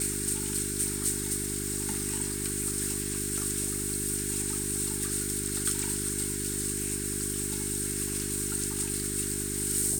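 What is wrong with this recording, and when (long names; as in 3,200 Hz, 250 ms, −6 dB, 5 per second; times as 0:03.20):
mains hum 50 Hz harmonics 8 −36 dBFS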